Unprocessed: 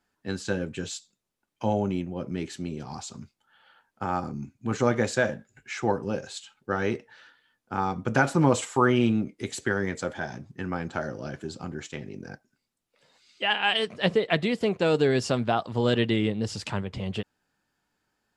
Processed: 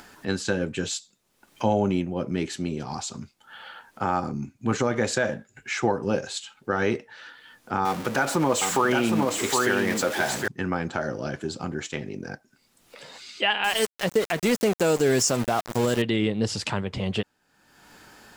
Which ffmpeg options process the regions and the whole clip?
-filter_complex "[0:a]asettb=1/sr,asplit=3[s0][s1][s2];[s0]atrim=end=7.854[s3];[s1]atrim=start=7.85:end=10.48,asetpts=PTS-STARTPTS,afade=t=in:d=0.004:c=qsin,afade=t=out:st=2.626:d=0.004:c=qsin,aeval=exprs='val(0)+0.5*0.0237*sgn(val(0))':c=same,lowshelf=f=170:g=-12,aecho=1:1:763:0.501,atrim=end_sample=115983[s4];[s2]atrim=start=10.476[s5];[s3][s4]acrossfade=d=0.004:c1=hsin:c2=qsin[s6];[s6][s5]acrossfade=d=0.004:c1=qsin:c2=hsin,asettb=1/sr,asplit=3[s7][s8][s9];[s7]atrim=end=13.644[s10];[s8]atrim=start=13.64:end=16.02,asetpts=PTS-STARTPTS,afade=t=in:d=0.004:c=qsin,afade=t=out:st=2.376:d=0.004:c=qsin,highshelf=f=4900:t=q:w=3:g=9.5,aeval=exprs='val(0)*gte(abs(val(0)),0.0299)':c=same[s11];[s9]atrim=start=16.016[s12];[s10][s11]acrossfade=d=0.004:c1=hsin:c2=qsin[s13];[s13][s12]acrossfade=d=0.004:c1=qsin:c2=hsin,lowshelf=f=180:g=-4.5,acompressor=mode=upward:threshold=0.0126:ratio=2.5,alimiter=limit=0.126:level=0:latency=1:release=141,volume=2"

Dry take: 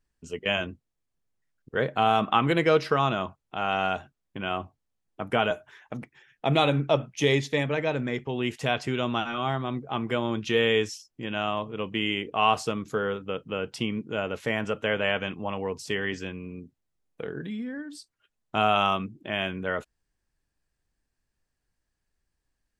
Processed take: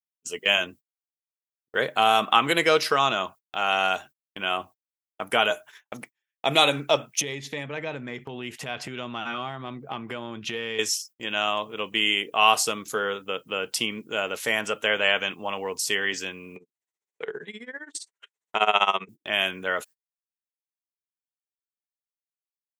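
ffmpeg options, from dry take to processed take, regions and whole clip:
-filter_complex "[0:a]asettb=1/sr,asplit=3[s0][s1][s2];[s0]atrim=end=7.214[s3];[s1]atrim=start=7.21:end=10.79,asetpts=PTS-STARTPTS,afade=t=in:d=0.004:c=qsin,afade=t=out:st=3.576:d=0.004:c=qsin,bass=f=250:g=10,treble=f=4000:g=-12,acompressor=threshold=0.0398:ratio=5:attack=3.2:release=140:knee=1:detection=peak[s4];[s2]atrim=start=10.786[s5];[s3][s4]acrossfade=d=0.004:c1=hsin:c2=qsin[s6];[s6][s5]acrossfade=d=0.004:c1=qsin:c2=hsin,asettb=1/sr,asplit=3[s7][s8][s9];[s7]atrim=end=16.564[s10];[s8]atrim=start=16.56:end=19.09,asetpts=PTS-STARTPTS,afade=t=in:d=0.004:c=qsin,afade=t=out:st=2.526:d=0.004:c=qsin,acompressor=mode=upward:threshold=0.0316:ratio=2.5:attack=3.2:release=140:knee=2.83:detection=peak,tremolo=f=15:d=0.91,highpass=150,equalizer=f=280:t=q:w=4:g=-9,equalizer=f=420:t=q:w=4:g=9,equalizer=f=950:t=q:w=4:g=7,equalizer=f=2000:t=q:w=4:g=8,equalizer=f=4900:t=q:w=4:g=-9,lowpass=f=7800:w=0.5412,lowpass=f=7800:w=1.3066[s11];[s9]atrim=start=19.086[s12];[s10][s11]acrossfade=d=0.004:c1=hsin:c2=qsin[s13];[s13][s12]acrossfade=d=0.004:c1=qsin:c2=hsin,aemphasis=mode=production:type=riaa,agate=range=0.0178:threshold=0.00501:ratio=16:detection=peak,lowshelf=f=140:g=-3.5,volume=1.41"

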